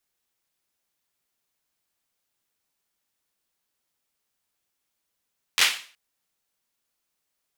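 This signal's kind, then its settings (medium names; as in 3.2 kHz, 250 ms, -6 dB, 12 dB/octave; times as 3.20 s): hand clap length 0.37 s, bursts 4, apart 11 ms, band 2.6 kHz, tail 0.41 s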